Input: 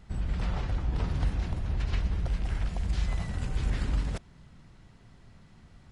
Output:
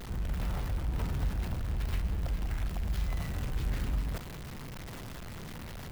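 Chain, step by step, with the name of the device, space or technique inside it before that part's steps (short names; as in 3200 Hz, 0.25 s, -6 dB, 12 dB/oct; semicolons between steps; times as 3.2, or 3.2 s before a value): early CD player with a faulty converter (zero-crossing step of -32 dBFS; clock jitter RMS 0.027 ms); gain -5 dB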